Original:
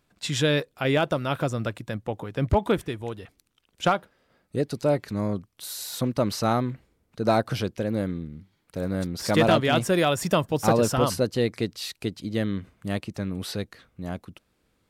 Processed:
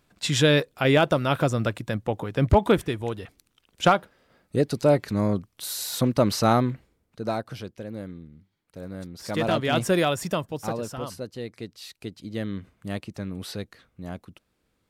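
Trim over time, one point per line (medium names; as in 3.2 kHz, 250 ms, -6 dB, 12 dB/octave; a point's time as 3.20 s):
6.65 s +3.5 dB
7.48 s -9 dB
9.18 s -9 dB
9.91 s +1 dB
10.85 s -11 dB
11.44 s -11 dB
12.59 s -3 dB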